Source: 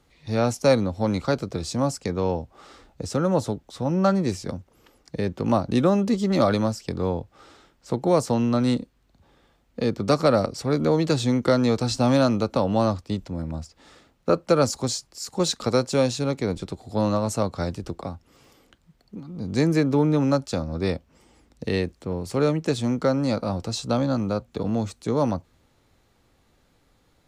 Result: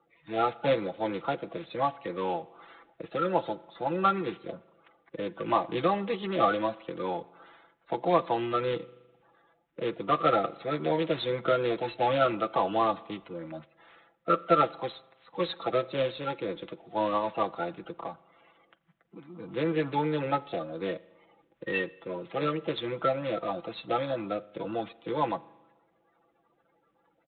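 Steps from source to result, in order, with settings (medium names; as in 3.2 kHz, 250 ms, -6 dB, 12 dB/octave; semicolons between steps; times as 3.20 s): coarse spectral quantiser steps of 30 dB; high-pass 940 Hz 6 dB/octave; level-controlled noise filter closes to 2 kHz, open at -25.5 dBFS; comb 6 ms, depth 68%; spring tank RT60 1.1 s, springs 40 ms, chirp 60 ms, DRR 19.5 dB; IMA ADPCM 32 kbps 8 kHz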